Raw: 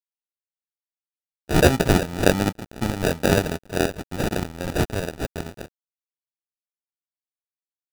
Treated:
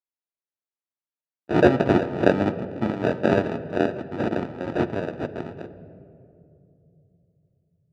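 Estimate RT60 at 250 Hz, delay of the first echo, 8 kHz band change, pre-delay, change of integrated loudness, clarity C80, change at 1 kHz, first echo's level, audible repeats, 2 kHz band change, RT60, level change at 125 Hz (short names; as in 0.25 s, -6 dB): 3.9 s, none, under -20 dB, 3 ms, -1.0 dB, 14.5 dB, -0.5 dB, none, none, -3.0 dB, 2.7 s, -4.5 dB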